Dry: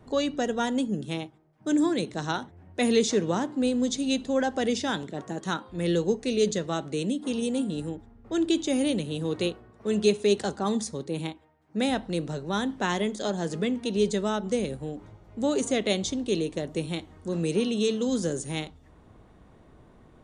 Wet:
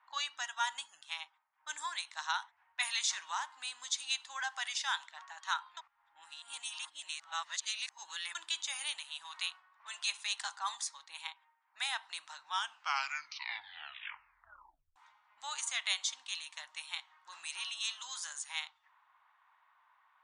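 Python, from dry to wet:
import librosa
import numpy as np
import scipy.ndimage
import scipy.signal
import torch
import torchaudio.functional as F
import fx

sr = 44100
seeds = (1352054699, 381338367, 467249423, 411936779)

y = fx.edit(x, sr, fx.reverse_span(start_s=5.77, length_s=2.58),
    fx.tape_stop(start_s=12.38, length_s=2.58), tone=tone)
y = fx.env_lowpass(y, sr, base_hz=2100.0, full_db=-23.5)
y = scipy.signal.sosfilt(scipy.signal.ellip(4, 1.0, 50, 930.0, 'highpass', fs=sr, output='sos'), y)
y = F.gain(torch.from_numpy(y), -1.5).numpy()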